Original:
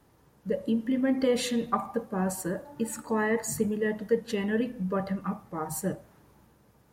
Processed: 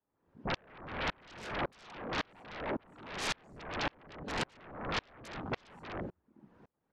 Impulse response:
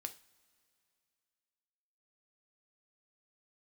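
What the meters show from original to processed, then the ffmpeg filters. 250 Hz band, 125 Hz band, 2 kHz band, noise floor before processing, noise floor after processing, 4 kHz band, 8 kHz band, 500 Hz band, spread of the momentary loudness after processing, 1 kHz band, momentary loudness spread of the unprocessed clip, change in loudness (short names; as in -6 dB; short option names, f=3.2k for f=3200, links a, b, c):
-16.0 dB, -9.0 dB, -2.0 dB, -62 dBFS, -82 dBFS, 0.0 dB, -13.0 dB, -13.5 dB, 8 LU, -4.5 dB, 8 LU, -10.0 dB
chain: -filter_complex "[0:a]highpass=140,acompressor=threshold=-26dB:ratio=6,asplit=2[a][b];[b]adelay=40,volume=-13dB[c];[a][c]amix=inputs=2:normalize=0,alimiter=level_in=3.5dB:limit=-24dB:level=0:latency=1:release=76,volume=-3.5dB,lowpass=2.4k,asoftclip=type=tanh:threshold=-35.5dB,afftfilt=real='hypot(re,im)*cos(2*PI*random(0))':imag='hypot(re,im)*sin(2*PI*random(1))':win_size=512:overlap=0.75,afwtdn=0.00224,bandreject=f=60:t=h:w=6,bandreject=f=120:t=h:w=6,bandreject=f=180:t=h:w=6,bandreject=f=240:t=h:w=6,bandreject=f=300:t=h:w=6,bandreject=f=360:t=h:w=6,aeval=exprs='0.0224*sin(PI/2*10*val(0)/0.0224)':c=same,aeval=exprs='val(0)*pow(10,-36*if(lt(mod(-1.8*n/s,1),2*abs(-1.8)/1000),1-mod(-1.8*n/s,1)/(2*abs(-1.8)/1000),(mod(-1.8*n/s,1)-2*abs(-1.8)/1000)/(1-2*abs(-1.8)/1000))/20)':c=same,volume=5.5dB"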